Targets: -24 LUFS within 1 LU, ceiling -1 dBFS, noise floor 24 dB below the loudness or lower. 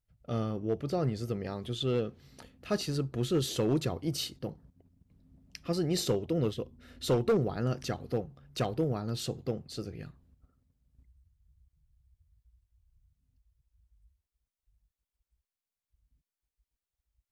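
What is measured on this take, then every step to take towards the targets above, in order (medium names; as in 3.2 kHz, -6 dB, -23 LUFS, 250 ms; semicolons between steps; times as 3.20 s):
clipped samples 0.3%; clipping level -21.0 dBFS; loudness -33.0 LUFS; peak level -21.0 dBFS; loudness target -24.0 LUFS
-> clip repair -21 dBFS; trim +9 dB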